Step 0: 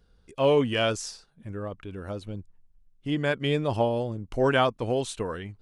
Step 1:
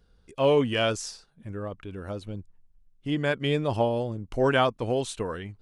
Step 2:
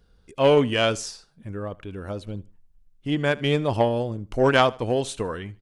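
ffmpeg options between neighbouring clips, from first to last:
-af anull
-af "aeval=exprs='0.355*(cos(1*acos(clip(val(0)/0.355,-1,1)))-cos(1*PI/2))+0.0562*(cos(3*acos(clip(val(0)/0.355,-1,1)))-cos(3*PI/2))+0.00282*(cos(5*acos(clip(val(0)/0.355,-1,1)))-cos(5*PI/2))':c=same,aecho=1:1:76|152:0.0794|0.0238,volume=7.5dB"

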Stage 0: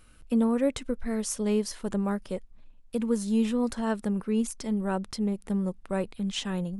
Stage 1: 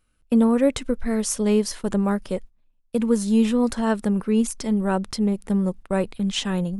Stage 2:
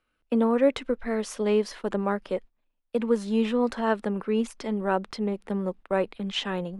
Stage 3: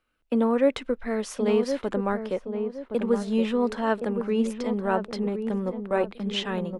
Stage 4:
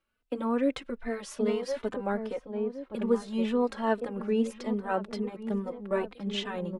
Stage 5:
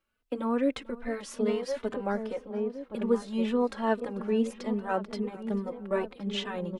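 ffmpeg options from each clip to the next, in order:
-af "agate=range=-19dB:threshold=-42dB:ratio=16:detection=peak,volume=6.5dB"
-filter_complex "[0:a]acrossover=split=280 4000:gain=0.224 1 0.141[a][b][c];[a][b][c]amix=inputs=3:normalize=0"
-filter_complex "[0:a]asplit=2[a][b];[b]adelay=1068,lowpass=f=830:p=1,volume=-6dB,asplit=2[c][d];[d]adelay=1068,lowpass=f=830:p=1,volume=0.39,asplit=2[e][f];[f]adelay=1068,lowpass=f=830:p=1,volume=0.39,asplit=2[g][h];[h]adelay=1068,lowpass=f=830:p=1,volume=0.39,asplit=2[i][j];[j]adelay=1068,lowpass=f=830:p=1,volume=0.39[k];[a][c][e][g][i][k]amix=inputs=6:normalize=0"
-filter_complex "[0:a]asplit=2[a][b];[b]adelay=3.2,afreqshift=2.4[c];[a][c]amix=inputs=2:normalize=1,volume=-1.5dB"
-af "aecho=1:1:442|884:0.0891|0.0294"

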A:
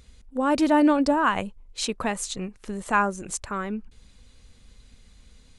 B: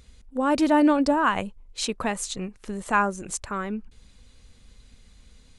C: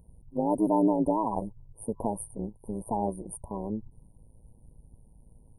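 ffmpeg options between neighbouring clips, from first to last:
-af anull
-filter_complex "[0:a]afftfilt=real='re*(1-between(b*sr/4096,1000,8800))':imag='im*(1-between(b*sr/4096,1000,8800))':win_size=4096:overlap=0.75,asplit=2[a][b];[b]alimiter=limit=-17dB:level=0:latency=1:release=222,volume=2dB[c];[a][c]amix=inputs=2:normalize=0,tremolo=f=110:d=0.75,volume=-6dB"

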